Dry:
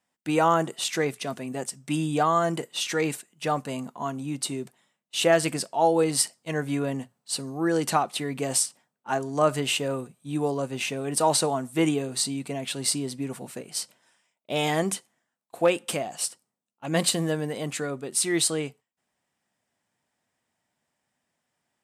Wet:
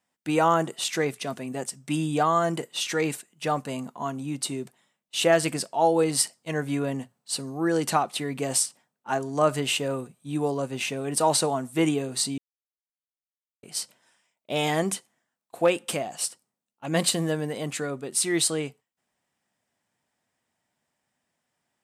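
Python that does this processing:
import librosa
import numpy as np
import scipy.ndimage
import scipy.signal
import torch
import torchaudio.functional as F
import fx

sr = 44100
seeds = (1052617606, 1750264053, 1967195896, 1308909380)

y = fx.edit(x, sr, fx.silence(start_s=12.38, length_s=1.25), tone=tone)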